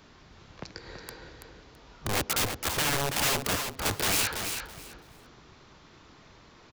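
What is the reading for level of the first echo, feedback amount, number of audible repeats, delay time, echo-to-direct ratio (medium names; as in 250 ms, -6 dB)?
-7.0 dB, 20%, 3, 331 ms, -7.0 dB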